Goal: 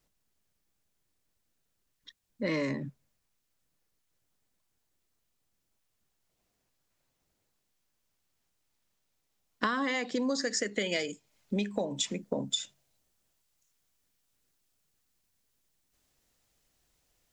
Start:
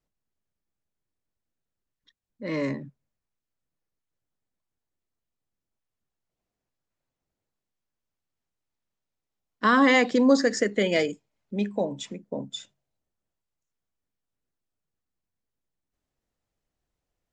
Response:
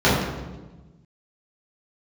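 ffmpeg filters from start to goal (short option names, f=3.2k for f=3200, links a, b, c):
-af "asetnsamples=n=441:p=0,asendcmd='10.22 highshelf g 11.5',highshelf=f=2.2k:g=6.5,acompressor=threshold=-33dB:ratio=12,volume=5.5dB"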